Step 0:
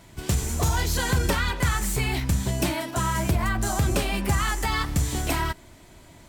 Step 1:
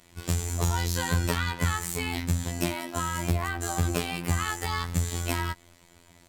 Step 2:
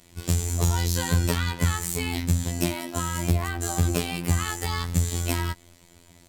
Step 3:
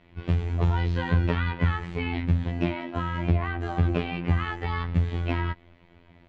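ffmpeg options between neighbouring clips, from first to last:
-filter_complex "[0:a]acrossover=split=1600[a][b];[a]aeval=exprs='sgn(val(0))*max(abs(val(0))-0.002,0)':c=same[c];[c][b]amix=inputs=2:normalize=0,afftfilt=real='hypot(re,im)*cos(PI*b)':imag='0':win_size=2048:overlap=0.75"
-af "equalizer=f=1.3k:w=0.56:g=-5.5,volume=4dB"
-af "lowpass=f=2.8k:w=0.5412,lowpass=f=2.8k:w=1.3066"

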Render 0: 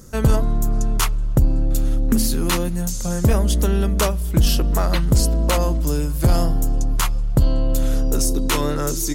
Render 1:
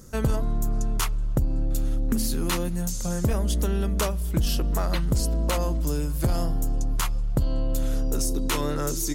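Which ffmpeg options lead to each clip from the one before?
-af "acompressor=threshold=-17dB:ratio=2.5,volume=-4dB"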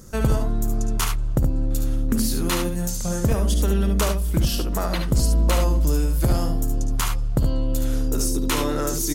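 -af "aecho=1:1:57|72:0.251|0.473,volume=2.5dB"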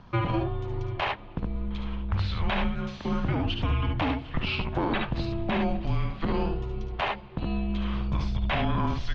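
-af "highpass=f=270:t=q:w=0.5412,highpass=f=270:t=q:w=1.307,lowpass=f=3.6k:t=q:w=0.5176,lowpass=f=3.6k:t=q:w=0.7071,lowpass=f=3.6k:t=q:w=1.932,afreqshift=-320,alimiter=limit=-22.5dB:level=0:latency=1:release=20,volume=4.5dB"

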